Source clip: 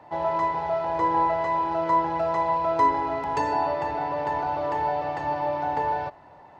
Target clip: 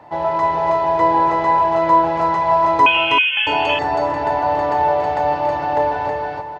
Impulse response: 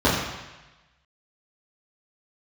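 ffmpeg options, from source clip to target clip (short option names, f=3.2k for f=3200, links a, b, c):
-filter_complex "[0:a]asplit=2[a][b];[b]aecho=0:1:282:0.398[c];[a][c]amix=inputs=2:normalize=0,asettb=1/sr,asplit=3[d][e][f];[d]atrim=end=2.864[g];[e]atrim=start=2.86:end=3.47,asetpts=PTS-STARTPTS,afade=t=in:d=0.004:c=qsin,afade=t=out:st=0.606:d=0.004:c=qsin,lowpass=f=3k:t=q:w=0.5098,lowpass=f=3k:t=q:w=0.6013,lowpass=f=3k:t=q:w=0.9,lowpass=f=3k:t=q:w=2.563,afreqshift=-3500[h];[f]atrim=start=3.466[i];[g][h]acrossfade=d=0.004:c1=hsin:c2=qsin[j];[j][i]acrossfade=d=0.004:c1=qsin:c2=hsin,asplit=2[k][l];[l]aecho=0:1:321:0.708[m];[k][m]amix=inputs=2:normalize=0,volume=6dB"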